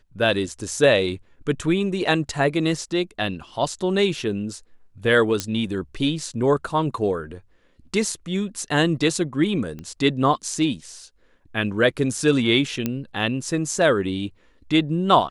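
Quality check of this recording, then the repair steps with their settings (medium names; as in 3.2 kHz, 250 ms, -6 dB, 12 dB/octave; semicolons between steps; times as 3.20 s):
5.40 s: pop -8 dBFS
9.79 s: pop -23 dBFS
12.86 s: pop -10 dBFS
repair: de-click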